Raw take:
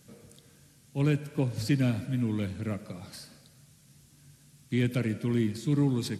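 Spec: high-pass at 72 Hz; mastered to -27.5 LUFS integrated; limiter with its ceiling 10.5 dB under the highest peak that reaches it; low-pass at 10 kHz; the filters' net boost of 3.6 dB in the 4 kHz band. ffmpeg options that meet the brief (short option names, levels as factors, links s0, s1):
-af "highpass=72,lowpass=10000,equalizer=f=4000:t=o:g=4.5,volume=2.51,alimiter=limit=0.133:level=0:latency=1"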